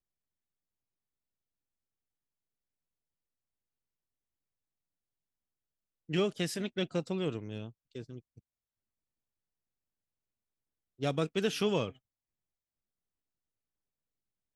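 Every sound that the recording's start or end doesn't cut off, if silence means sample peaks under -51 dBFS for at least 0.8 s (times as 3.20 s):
6.09–8.39 s
10.99–11.96 s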